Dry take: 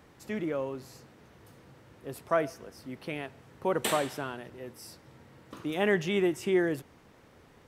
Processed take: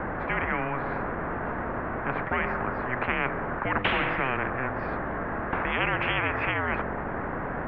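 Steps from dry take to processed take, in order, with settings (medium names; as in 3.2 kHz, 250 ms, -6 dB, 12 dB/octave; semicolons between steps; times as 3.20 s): de-hum 46.84 Hz, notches 18; mistuned SSB -260 Hz 240–2100 Hz; spectrum-flattening compressor 10:1; trim +5.5 dB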